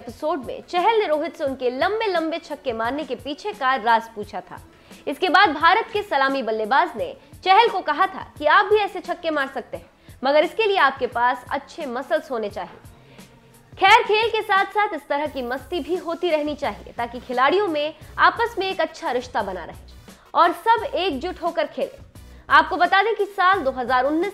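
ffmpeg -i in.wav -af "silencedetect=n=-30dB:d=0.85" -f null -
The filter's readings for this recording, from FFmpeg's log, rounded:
silence_start: 12.65
silence_end: 13.79 | silence_duration: 1.14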